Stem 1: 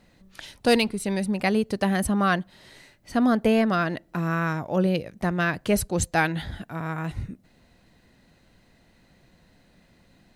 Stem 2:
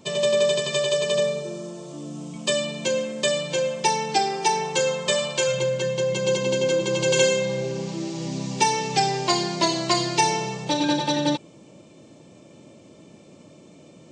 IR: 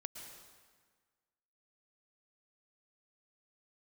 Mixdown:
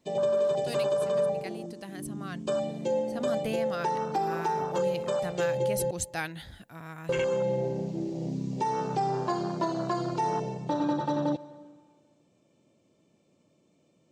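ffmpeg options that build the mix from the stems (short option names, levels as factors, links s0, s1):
-filter_complex "[0:a]highshelf=f=3000:g=11,volume=0.224,afade=t=in:st=3.01:d=0.39:silence=0.398107[s0];[1:a]afwtdn=0.0631,volume=0.668,asplit=3[s1][s2][s3];[s1]atrim=end=5.91,asetpts=PTS-STARTPTS,afade=t=out:st=5.906:d=0.004:c=hsin[s4];[s2]atrim=start=5.91:end=7.09,asetpts=PTS-STARTPTS,volume=0[s5];[s3]atrim=start=7.09,asetpts=PTS-STARTPTS,afade=t=in:d=0.004:c=hsin[s6];[s4][s5][s6]concat=n=3:v=0:a=1,asplit=2[s7][s8];[s8]volume=0.299[s9];[2:a]atrim=start_sample=2205[s10];[s9][s10]afir=irnorm=-1:irlink=0[s11];[s0][s7][s11]amix=inputs=3:normalize=0,alimiter=limit=0.112:level=0:latency=1:release=167"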